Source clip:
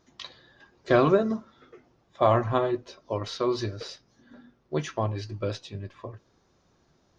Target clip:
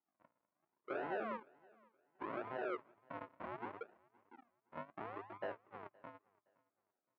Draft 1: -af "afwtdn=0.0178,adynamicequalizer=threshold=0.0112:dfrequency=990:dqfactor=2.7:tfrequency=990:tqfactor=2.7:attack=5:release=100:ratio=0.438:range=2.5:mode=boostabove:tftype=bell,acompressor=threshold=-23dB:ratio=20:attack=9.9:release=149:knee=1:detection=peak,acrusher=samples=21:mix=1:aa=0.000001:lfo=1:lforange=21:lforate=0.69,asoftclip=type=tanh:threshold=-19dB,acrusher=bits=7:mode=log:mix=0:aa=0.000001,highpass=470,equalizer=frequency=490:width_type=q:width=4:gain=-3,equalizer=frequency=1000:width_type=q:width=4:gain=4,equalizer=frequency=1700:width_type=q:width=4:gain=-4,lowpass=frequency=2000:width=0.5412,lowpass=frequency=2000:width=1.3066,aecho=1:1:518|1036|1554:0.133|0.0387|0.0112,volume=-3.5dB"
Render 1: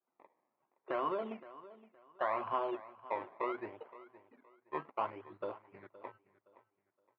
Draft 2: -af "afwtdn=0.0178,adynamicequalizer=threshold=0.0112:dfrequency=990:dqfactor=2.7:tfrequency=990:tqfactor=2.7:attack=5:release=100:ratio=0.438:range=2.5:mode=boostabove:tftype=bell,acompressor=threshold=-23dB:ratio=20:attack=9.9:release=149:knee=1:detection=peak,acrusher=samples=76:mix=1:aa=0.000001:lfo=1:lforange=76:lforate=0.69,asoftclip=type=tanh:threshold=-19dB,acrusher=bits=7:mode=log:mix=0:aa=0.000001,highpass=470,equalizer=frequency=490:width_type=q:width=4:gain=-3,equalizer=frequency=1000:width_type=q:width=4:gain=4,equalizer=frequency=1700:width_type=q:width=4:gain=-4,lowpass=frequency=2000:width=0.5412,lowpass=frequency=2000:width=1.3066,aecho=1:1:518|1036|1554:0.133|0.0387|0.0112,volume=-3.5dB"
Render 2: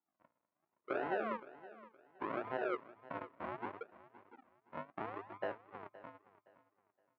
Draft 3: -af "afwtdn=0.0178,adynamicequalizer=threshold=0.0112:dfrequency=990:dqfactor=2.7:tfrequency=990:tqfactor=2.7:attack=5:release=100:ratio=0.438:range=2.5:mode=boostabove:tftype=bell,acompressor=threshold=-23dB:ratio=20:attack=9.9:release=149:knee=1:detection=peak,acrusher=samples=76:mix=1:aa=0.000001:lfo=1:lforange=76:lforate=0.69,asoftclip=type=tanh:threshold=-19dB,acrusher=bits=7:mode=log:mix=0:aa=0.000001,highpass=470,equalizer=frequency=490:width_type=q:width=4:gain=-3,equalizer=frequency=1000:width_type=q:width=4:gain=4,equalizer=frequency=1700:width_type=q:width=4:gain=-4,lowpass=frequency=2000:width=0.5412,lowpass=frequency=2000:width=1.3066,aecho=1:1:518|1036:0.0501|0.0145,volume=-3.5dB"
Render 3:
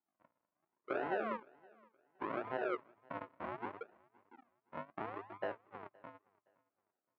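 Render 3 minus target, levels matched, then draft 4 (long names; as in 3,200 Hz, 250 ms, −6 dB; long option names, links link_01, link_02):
soft clipping: distortion −8 dB
-af "afwtdn=0.0178,adynamicequalizer=threshold=0.0112:dfrequency=990:dqfactor=2.7:tfrequency=990:tqfactor=2.7:attack=5:release=100:ratio=0.438:range=2.5:mode=boostabove:tftype=bell,acompressor=threshold=-23dB:ratio=20:attack=9.9:release=149:knee=1:detection=peak,acrusher=samples=76:mix=1:aa=0.000001:lfo=1:lforange=76:lforate=0.69,asoftclip=type=tanh:threshold=-28dB,acrusher=bits=7:mode=log:mix=0:aa=0.000001,highpass=470,equalizer=frequency=490:width_type=q:width=4:gain=-3,equalizer=frequency=1000:width_type=q:width=4:gain=4,equalizer=frequency=1700:width_type=q:width=4:gain=-4,lowpass=frequency=2000:width=0.5412,lowpass=frequency=2000:width=1.3066,aecho=1:1:518|1036:0.0501|0.0145,volume=-3.5dB"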